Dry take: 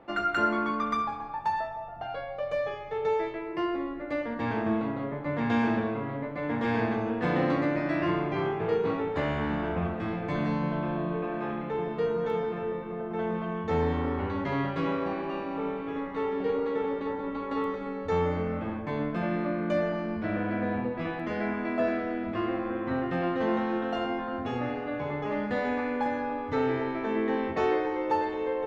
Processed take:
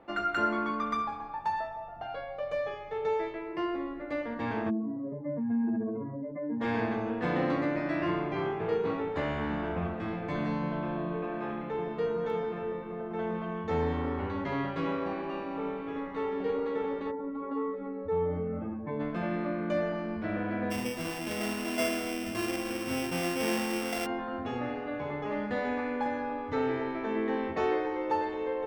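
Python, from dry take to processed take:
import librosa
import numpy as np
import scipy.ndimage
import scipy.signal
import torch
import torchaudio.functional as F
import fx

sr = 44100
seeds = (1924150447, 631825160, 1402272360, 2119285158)

y = fx.spec_expand(x, sr, power=2.4, at=(4.69, 6.6), fade=0.02)
y = fx.spec_expand(y, sr, power=1.6, at=(17.1, 18.99), fade=0.02)
y = fx.sample_sort(y, sr, block=16, at=(20.7, 24.05), fade=0.02)
y = fx.peak_eq(y, sr, hz=130.0, db=-3.5, octaves=0.44)
y = y * librosa.db_to_amplitude(-2.5)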